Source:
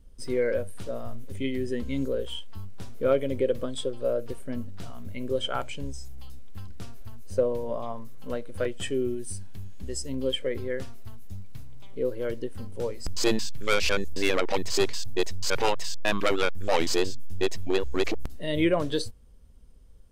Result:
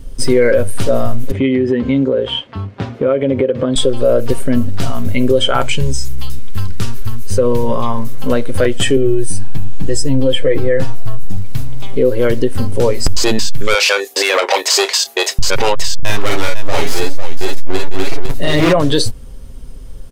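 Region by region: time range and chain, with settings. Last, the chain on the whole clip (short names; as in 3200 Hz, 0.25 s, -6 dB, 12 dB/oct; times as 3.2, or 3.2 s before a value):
1.31–3.76 BPF 110–2500 Hz + compressor, threshold -34 dBFS
5.66–7.98 bell 660 Hz -14.5 dB 0.42 oct + notch 280 Hz, Q 5.4
8.96–11.37 high shelf 2100 Hz -8 dB + notch 1500 Hz, Q 21 + comb 6.3 ms, depth 86%
13.74–15.39 HPF 500 Hz 24 dB/oct + doubler 28 ms -14 dB
15.99–18.73 overloaded stage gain 25 dB + tapped delay 40/47/54/502 ms -5/-4/-4/-8 dB
whole clip: comb 7.5 ms, depth 32%; compressor 2:1, threshold -29 dBFS; maximiser +23.5 dB; gain -1.5 dB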